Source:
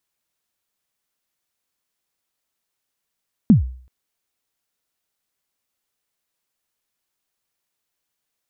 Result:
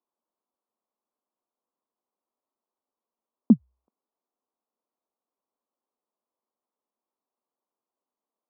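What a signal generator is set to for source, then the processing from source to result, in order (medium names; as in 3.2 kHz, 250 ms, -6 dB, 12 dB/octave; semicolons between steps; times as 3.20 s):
kick drum length 0.38 s, from 250 Hz, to 63 Hz, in 127 ms, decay 0.49 s, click off, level -4.5 dB
elliptic band-pass 220–1100 Hz, stop band 40 dB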